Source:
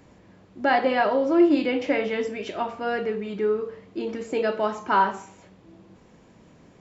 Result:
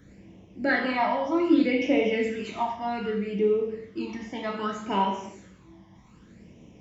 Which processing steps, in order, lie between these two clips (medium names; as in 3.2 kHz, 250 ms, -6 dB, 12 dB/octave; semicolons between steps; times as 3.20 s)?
phase shifter stages 12, 0.64 Hz, lowest notch 430–1500 Hz; gated-style reverb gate 270 ms falling, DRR 1.5 dB